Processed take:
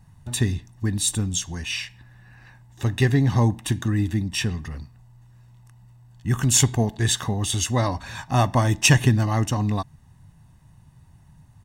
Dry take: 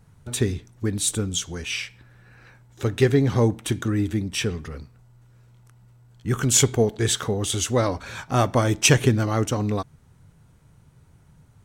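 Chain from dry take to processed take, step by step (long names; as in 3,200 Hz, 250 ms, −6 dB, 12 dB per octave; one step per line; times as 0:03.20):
comb filter 1.1 ms, depth 65%
level −1 dB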